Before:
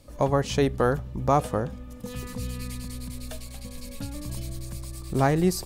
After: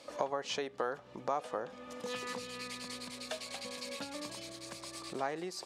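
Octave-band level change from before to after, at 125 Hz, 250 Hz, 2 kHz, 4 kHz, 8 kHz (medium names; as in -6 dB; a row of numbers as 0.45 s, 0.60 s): -27.0 dB, -16.5 dB, -6.5 dB, -2.0 dB, -7.5 dB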